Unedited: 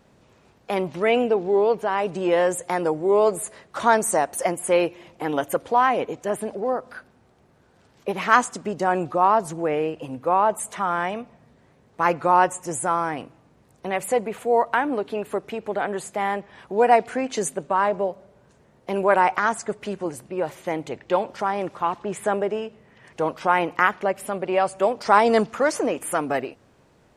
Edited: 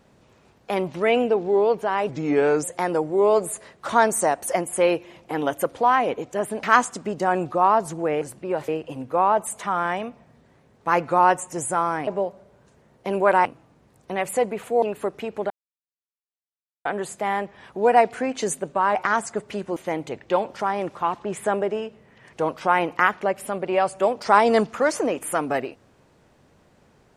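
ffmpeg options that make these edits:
ffmpeg -i in.wav -filter_complex "[0:a]asplit=12[link_01][link_02][link_03][link_04][link_05][link_06][link_07][link_08][link_09][link_10][link_11][link_12];[link_01]atrim=end=2.094[link_13];[link_02]atrim=start=2.09:end=2.54,asetpts=PTS-STARTPTS,asetrate=36603,aresample=44100[link_14];[link_03]atrim=start=2.536:end=6.542[link_15];[link_04]atrim=start=8.228:end=9.812[link_16];[link_05]atrim=start=20.088:end=20.562[link_17];[link_06]atrim=start=9.808:end=13.202[link_18];[link_07]atrim=start=17.898:end=19.282[link_19];[link_08]atrim=start=13.198:end=14.572[link_20];[link_09]atrim=start=15.118:end=15.8,asetpts=PTS-STARTPTS,afade=type=out:start_time=0.678:duration=0.004:curve=hsin,apad=pad_dur=1.35[link_21];[link_10]atrim=start=15.8:end=17.902,asetpts=PTS-STARTPTS,afade=type=in:duration=0.004:curve=hsin[link_22];[link_11]atrim=start=19.278:end=20.092[link_23];[link_12]atrim=start=20.558[link_24];[link_13][link_14]acrossfade=duration=0.004:curve1=hsin:curve2=hsin[link_25];[link_25][link_15]acrossfade=duration=0.004:curve1=hsin:curve2=hsin[link_26];[link_26][link_16]acrossfade=duration=0.004:curve1=hsin:curve2=hsin[link_27];[link_27][link_17]acrossfade=duration=0.004:curve1=hsin:curve2=hsin[link_28];[link_28][link_18]acrossfade=duration=0.004:curve1=hsin:curve2=hsin[link_29];[link_29][link_19]acrossfade=duration=0.004:curve1=hsin:curve2=hsin[link_30];[link_30][link_20]acrossfade=duration=0.004:curve1=hsin:curve2=hsin[link_31];[link_21][link_22]concat=n=2:v=0:a=1[link_32];[link_31][link_32]acrossfade=duration=0.004:curve1=hsin:curve2=hsin[link_33];[link_33][link_23]acrossfade=duration=0.004:curve1=hsin:curve2=hsin[link_34];[link_34][link_24]acrossfade=duration=0.004:curve1=hsin:curve2=hsin" out.wav

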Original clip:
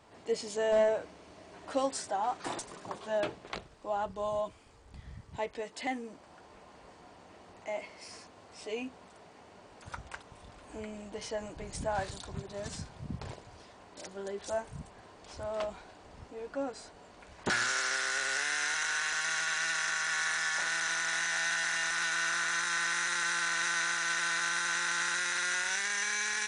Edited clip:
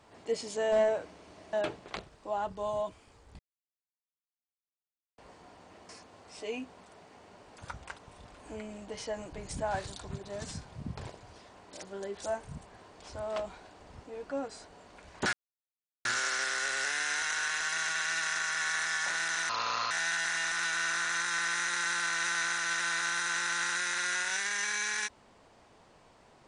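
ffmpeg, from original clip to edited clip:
ffmpeg -i in.wav -filter_complex "[0:a]asplit=8[link_01][link_02][link_03][link_04][link_05][link_06][link_07][link_08];[link_01]atrim=end=1.532[link_09];[link_02]atrim=start=3.118:end=4.98,asetpts=PTS-STARTPTS,afade=type=out:start_time=1.858:duration=0.004:curve=hsin[link_10];[link_03]atrim=start=4.98:end=6.77,asetpts=PTS-STARTPTS,volume=0[link_11];[link_04]atrim=start=6.77:end=7.482,asetpts=PTS-STARTPTS,afade=type=in:duration=0.004:curve=hsin[link_12];[link_05]atrim=start=8.128:end=17.57,asetpts=PTS-STARTPTS,afade=type=out:start_time=9.438:duration=0.004:curve=hsin,apad=pad_dur=0.72[link_13];[link_06]atrim=start=17.57:end=21.014,asetpts=PTS-STARTPTS,afade=type=in:duration=0.004:curve=hsin[link_14];[link_07]atrim=start=21.01:end=21.3,asetpts=PTS-STARTPTS,asetrate=30429,aresample=44100[link_15];[link_08]atrim=start=21.296[link_16];[link_10][link_11][link_12]concat=n=3:v=0:a=1[link_17];[link_09][link_17]acrossfade=duration=0.004:curve1=hsin:curve2=hsin[link_18];[link_13][link_14]concat=n=2:v=0:a=1[link_19];[link_18][link_19]acrossfade=duration=0.004:curve1=hsin:curve2=hsin[link_20];[link_20][link_15]acrossfade=duration=0.004:curve1=hsin:curve2=hsin[link_21];[link_21][link_16]acrossfade=duration=0.004:curve1=hsin:curve2=hsin" out.wav

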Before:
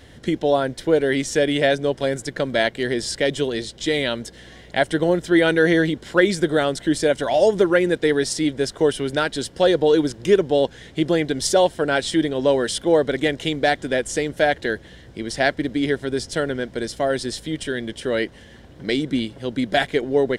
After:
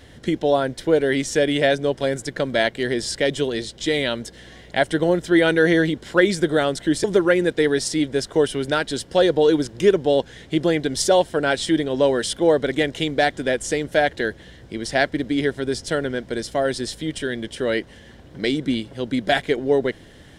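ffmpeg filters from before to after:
ffmpeg -i in.wav -filter_complex "[0:a]asplit=2[link_01][link_02];[link_01]atrim=end=7.042[link_03];[link_02]atrim=start=7.488[link_04];[link_03][link_04]acrossfade=duration=0.004:curve1=hsin:curve2=hsin" out.wav

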